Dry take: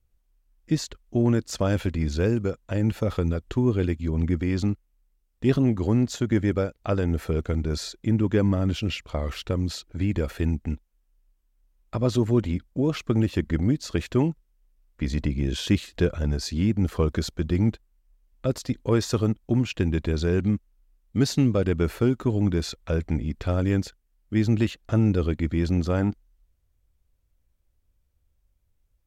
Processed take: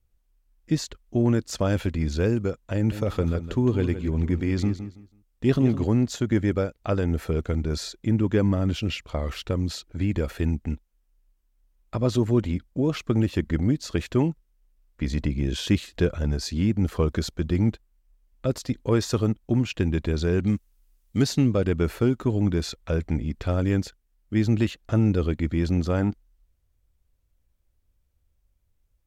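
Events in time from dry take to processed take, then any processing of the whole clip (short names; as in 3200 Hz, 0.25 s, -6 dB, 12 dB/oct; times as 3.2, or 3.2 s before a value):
2.75–5.84 feedback echo 0.164 s, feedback 23%, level -11 dB
20.47–21.22 high shelf 2900 Hz +11 dB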